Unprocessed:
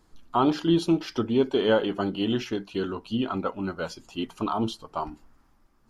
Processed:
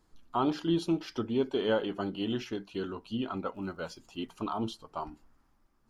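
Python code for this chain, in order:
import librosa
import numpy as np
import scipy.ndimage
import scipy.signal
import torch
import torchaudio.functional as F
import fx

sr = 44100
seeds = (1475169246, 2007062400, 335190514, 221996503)

y = fx.dmg_crackle(x, sr, seeds[0], per_s=fx.line((3.54, 190.0), (4.35, 44.0)), level_db=-51.0, at=(3.54, 4.35), fade=0.02)
y = y * librosa.db_to_amplitude(-6.5)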